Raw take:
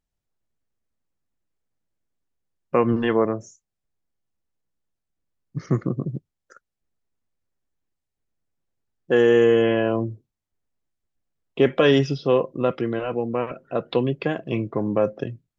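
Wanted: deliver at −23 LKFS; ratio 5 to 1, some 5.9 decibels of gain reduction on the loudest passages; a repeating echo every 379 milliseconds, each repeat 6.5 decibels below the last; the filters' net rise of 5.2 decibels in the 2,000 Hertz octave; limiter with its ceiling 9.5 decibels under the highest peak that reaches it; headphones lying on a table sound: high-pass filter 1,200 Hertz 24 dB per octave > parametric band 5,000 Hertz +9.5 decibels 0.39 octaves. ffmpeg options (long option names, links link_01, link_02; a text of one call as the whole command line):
ffmpeg -i in.wav -af "equalizer=frequency=2000:width_type=o:gain=6.5,acompressor=threshold=-18dB:ratio=5,alimiter=limit=-16.5dB:level=0:latency=1,highpass=frequency=1200:width=0.5412,highpass=frequency=1200:width=1.3066,equalizer=frequency=5000:width_type=o:width=0.39:gain=9.5,aecho=1:1:379|758|1137|1516|1895|2274:0.473|0.222|0.105|0.0491|0.0231|0.0109,volume=13dB" out.wav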